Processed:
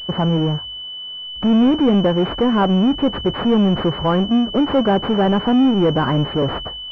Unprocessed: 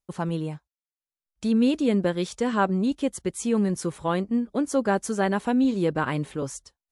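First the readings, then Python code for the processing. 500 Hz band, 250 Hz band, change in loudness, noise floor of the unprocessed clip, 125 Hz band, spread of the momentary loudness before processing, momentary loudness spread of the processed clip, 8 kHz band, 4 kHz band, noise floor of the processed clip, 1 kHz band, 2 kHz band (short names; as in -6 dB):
+7.5 dB, +8.5 dB, +8.5 dB, under -85 dBFS, +10.5 dB, 10 LU, 9 LU, under -15 dB, +18.0 dB, -31 dBFS, +7.5 dB, +3.0 dB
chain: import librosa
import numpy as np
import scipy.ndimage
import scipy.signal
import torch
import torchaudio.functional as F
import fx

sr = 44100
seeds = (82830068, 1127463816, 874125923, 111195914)

y = fx.hum_notches(x, sr, base_hz=50, count=2)
y = fx.power_curve(y, sr, exponent=0.5)
y = fx.pwm(y, sr, carrier_hz=3000.0)
y = F.gain(torch.from_numpy(y), 2.5).numpy()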